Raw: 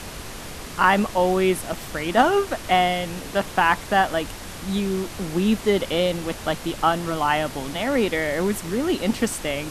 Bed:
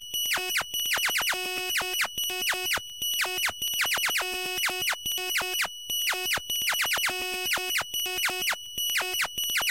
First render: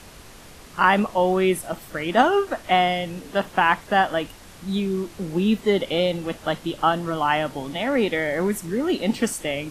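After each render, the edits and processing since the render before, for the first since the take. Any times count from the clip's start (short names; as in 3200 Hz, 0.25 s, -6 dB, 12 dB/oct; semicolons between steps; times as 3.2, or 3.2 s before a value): noise print and reduce 9 dB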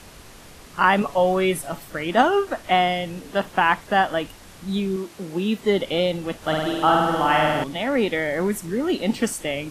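1.01–1.84 comb 7.1 ms, depth 57%; 4.96–5.61 HPF 240 Hz 6 dB/oct; 6.37–7.64 flutter echo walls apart 8.8 m, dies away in 1.4 s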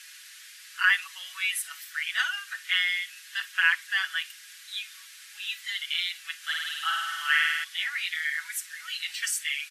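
elliptic high-pass 1600 Hz, stop band 80 dB; comb 6.1 ms, depth 73%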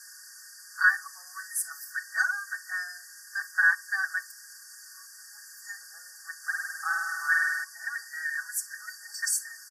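FFT band-reject 1900–4500 Hz; comb 2.6 ms, depth 74%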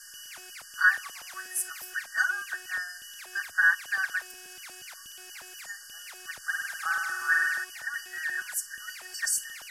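add bed -19.5 dB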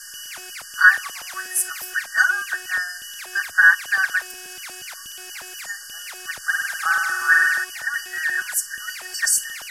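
gain +9 dB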